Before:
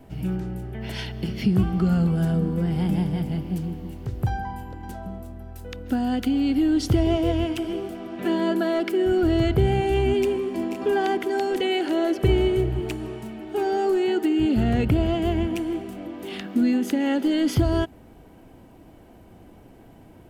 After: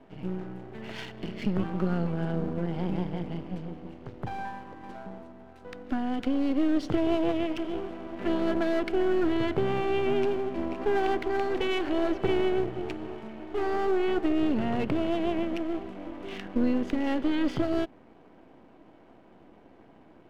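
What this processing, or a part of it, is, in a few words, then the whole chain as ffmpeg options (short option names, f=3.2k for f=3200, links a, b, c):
crystal radio: -af "highpass=210,lowpass=2.9k,aeval=exprs='if(lt(val(0),0),0.251*val(0),val(0))':c=same"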